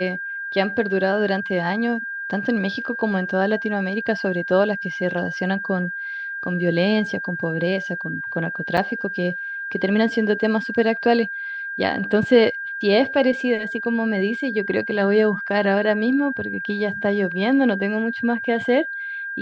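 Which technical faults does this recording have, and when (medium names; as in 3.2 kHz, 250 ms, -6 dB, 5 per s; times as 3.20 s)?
whine 1.6 kHz -27 dBFS
8.77–8.78 s: dropout 5.2 ms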